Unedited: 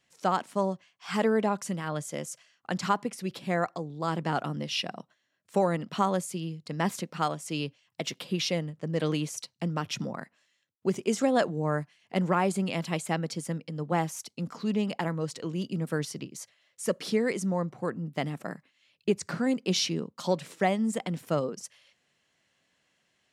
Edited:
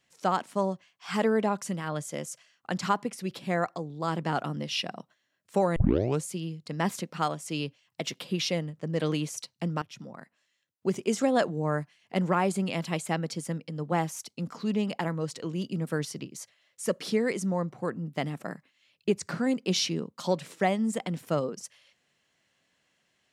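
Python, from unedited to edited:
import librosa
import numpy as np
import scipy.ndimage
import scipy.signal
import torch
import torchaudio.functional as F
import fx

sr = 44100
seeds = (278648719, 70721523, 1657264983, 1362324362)

y = fx.edit(x, sr, fx.tape_start(start_s=5.76, length_s=0.49),
    fx.fade_in_from(start_s=9.82, length_s=1.12, floor_db=-16.0), tone=tone)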